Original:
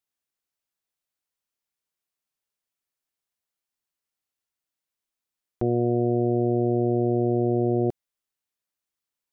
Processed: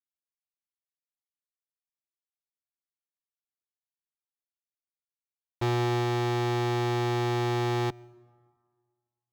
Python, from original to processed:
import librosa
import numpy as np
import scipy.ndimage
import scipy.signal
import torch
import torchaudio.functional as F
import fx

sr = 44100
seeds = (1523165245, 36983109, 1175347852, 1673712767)

y = fx.wiener(x, sr, points=41)
y = scipy.signal.sosfilt(scipy.signal.ellip(4, 1.0, 40, 820.0, 'lowpass', fs=sr, output='sos'), y)
y = y + 0.49 * np.pad(y, (int(0.8 * sr / 1000.0), 0))[:len(y)]
y = fx.fuzz(y, sr, gain_db=40.0, gate_db=-44.0)
y = fx.low_shelf(y, sr, hz=200.0, db=-6.0)
y = fx.rev_plate(y, sr, seeds[0], rt60_s=1.8, hf_ratio=0.55, predelay_ms=80, drr_db=16.5)
y = fx.upward_expand(y, sr, threshold_db=-24.0, expansion=2.5)
y = F.gain(torch.from_numpy(y), -8.0).numpy()